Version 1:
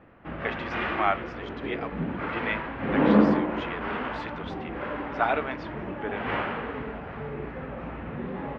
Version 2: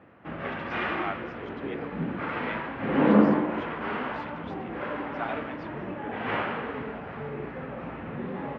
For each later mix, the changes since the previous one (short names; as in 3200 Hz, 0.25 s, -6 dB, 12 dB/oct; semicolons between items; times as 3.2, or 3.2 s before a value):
speech -9.0 dB; master: add HPF 96 Hz 12 dB/oct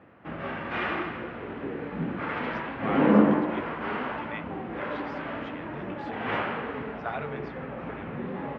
speech: entry +1.85 s